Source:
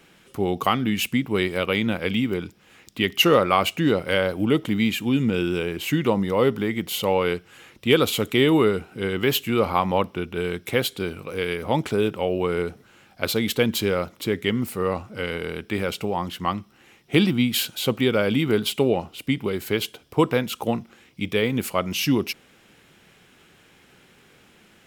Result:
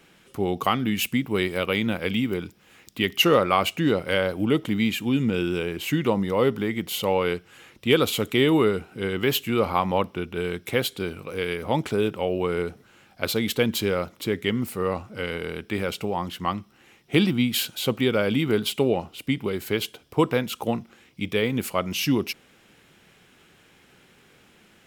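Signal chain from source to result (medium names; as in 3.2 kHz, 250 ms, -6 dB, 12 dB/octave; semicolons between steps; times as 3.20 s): 0.79–3.17 s: treble shelf 12 kHz +6.5 dB; trim -1.5 dB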